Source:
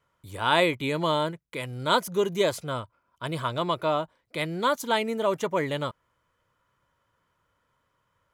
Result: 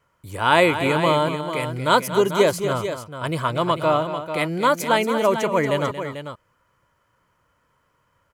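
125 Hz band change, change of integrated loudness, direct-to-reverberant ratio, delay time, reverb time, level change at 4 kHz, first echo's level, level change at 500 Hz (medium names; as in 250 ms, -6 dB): +7.0 dB, +6.0 dB, no reverb, 231 ms, no reverb, +3.0 dB, -11.0 dB, +7.0 dB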